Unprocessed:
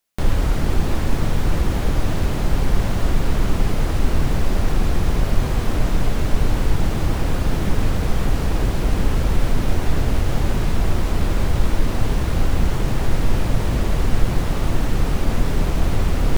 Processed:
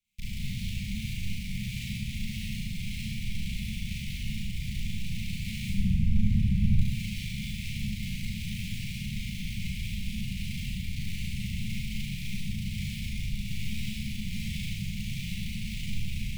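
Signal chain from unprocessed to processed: median filter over 9 samples; limiter -12 dBFS, peak gain reduction 9 dB; low shelf 60 Hz +4.5 dB; soft clip -19.5 dBFS, distortion -10 dB; flutter echo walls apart 6.2 m, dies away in 0.5 s; wavefolder -30 dBFS; 5.69–6.79 tilt shelf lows +10 dB, about 1300 Hz; Chebyshev band-stop 210–2200 Hz, order 5; Schroeder reverb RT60 1 s, combs from 29 ms, DRR -4 dB

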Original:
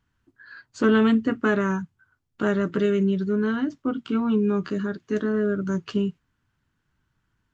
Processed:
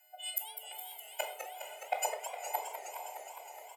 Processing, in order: frequency quantiser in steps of 3 st; treble ducked by the level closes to 1200 Hz, closed at -19.5 dBFS; fixed phaser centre 380 Hz, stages 8; comb 2.9 ms, depth 83%; flipped gate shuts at -26 dBFS, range -41 dB; soft clip -28.5 dBFS, distortion -18 dB; HPF 280 Hz 24 dB/oct; diffused feedback echo 0.955 s, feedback 51%, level -10 dB; shoebox room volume 3300 m³, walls furnished, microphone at 3.7 m; speed mistake 7.5 ips tape played at 15 ips; warbling echo 0.207 s, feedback 79%, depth 220 cents, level -9 dB; gain +8 dB

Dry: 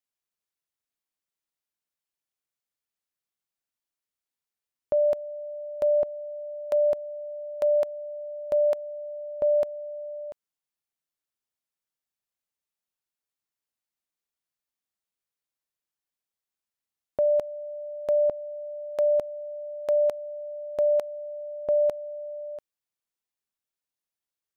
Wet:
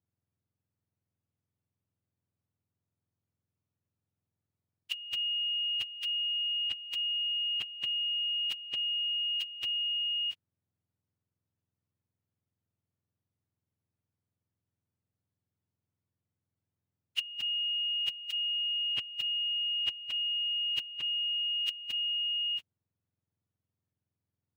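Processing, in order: spectrum mirrored in octaves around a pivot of 1300 Hz; negative-ratio compressor -30 dBFS, ratio -0.5; tilt shelf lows -8.5 dB, about 730 Hz; gain -8 dB

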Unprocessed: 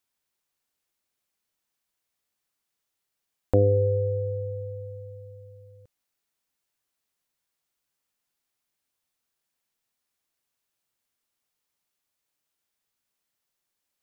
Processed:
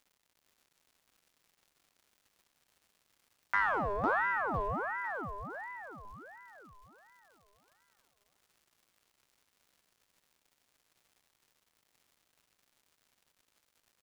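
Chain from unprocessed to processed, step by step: in parallel at -8.5 dB: wavefolder -26 dBFS; on the sum: crackle 240/s -46 dBFS; feedback echo 0.503 s, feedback 48%, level -4 dB; ring modulator with a swept carrier 1000 Hz, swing 50%, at 1.4 Hz; gain -7.5 dB

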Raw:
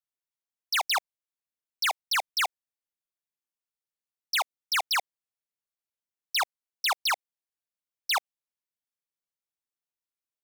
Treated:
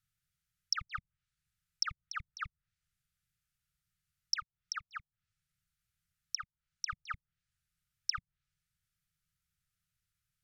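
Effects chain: treble ducked by the level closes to 490 Hz, closed at -28 dBFS; tilt shelf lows +10 dB, about 700 Hz; 4.35–6.88 compressor, threshold -48 dBFS, peak gain reduction 12.5 dB; brick-wall FIR band-stop 180–1200 Hz; gain +16 dB

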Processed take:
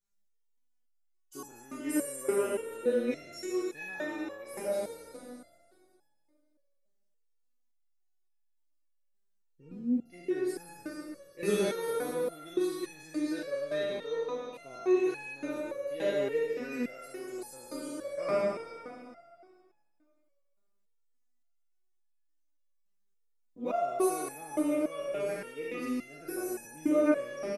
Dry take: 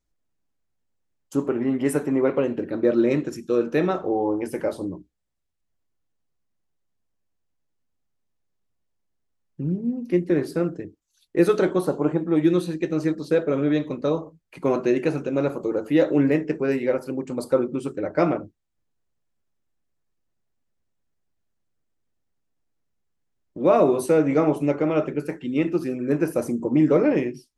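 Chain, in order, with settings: spectral trails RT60 2.26 s; high shelf 4000 Hz +9 dB; echo 0.392 s -15 dB; stepped resonator 3.5 Hz 200–850 Hz

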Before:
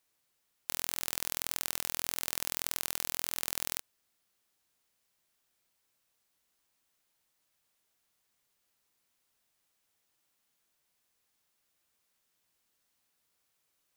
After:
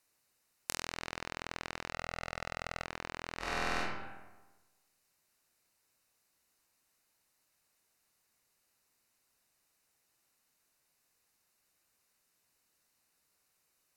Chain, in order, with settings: 1.92–2.86 comb 1.5 ms, depth 87%; treble ducked by the level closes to 2200 Hz, closed at -42 dBFS; notch 3300 Hz, Q 5.2; 3.38–3.78 reverb throw, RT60 1.2 s, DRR -8 dB; gain +2.5 dB

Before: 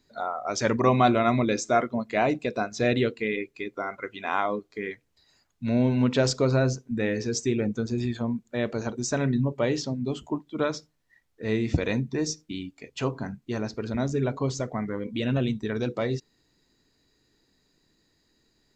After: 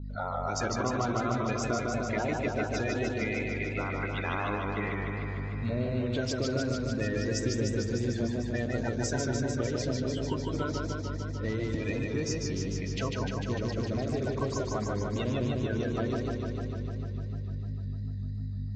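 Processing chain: bin magnitudes rounded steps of 30 dB; hum 50 Hz, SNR 10 dB; compressor 6:1, threshold -30 dBFS, peak gain reduction 14 dB; low-pass opened by the level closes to 930 Hz, open at -29.5 dBFS; warbling echo 0.15 s, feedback 77%, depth 89 cents, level -3 dB

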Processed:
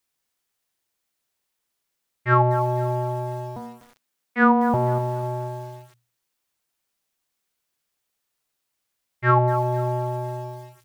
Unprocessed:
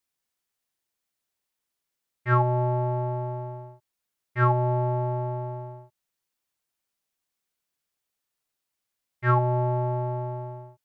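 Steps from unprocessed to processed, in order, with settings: 3.56–4.74 frequency shift +110 Hz; notches 60/120/180/240/300 Hz; lo-fi delay 0.247 s, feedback 35%, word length 7-bit, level -13 dB; gain +5 dB

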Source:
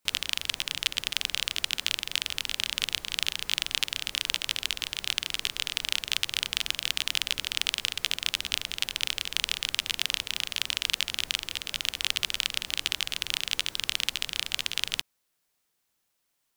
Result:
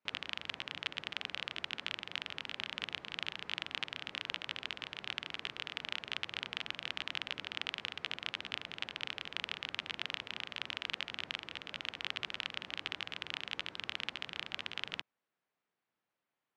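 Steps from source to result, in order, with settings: BPF 130–2100 Hz; gain -3.5 dB

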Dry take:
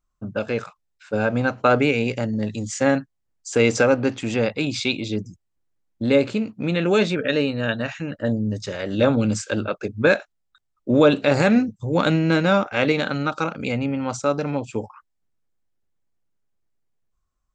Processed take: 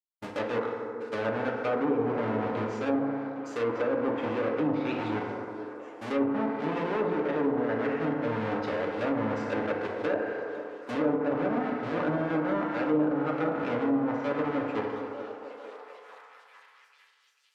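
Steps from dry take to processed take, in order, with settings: half-waves squared off; tone controls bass -7 dB, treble -9 dB; reverse; compressor 5:1, threshold -24 dBFS, peak gain reduction 14.5 dB; reverse; FDN reverb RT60 2.4 s, low-frequency decay 0.75×, high-frequency decay 0.3×, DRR -0.5 dB; expander -36 dBFS; low shelf 87 Hz -12 dB; delay with a stepping band-pass 0.447 s, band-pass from 330 Hz, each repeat 0.7 oct, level -7 dB; treble ducked by the level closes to 940 Hz, closed at -17 dBFS; gain -5 dB

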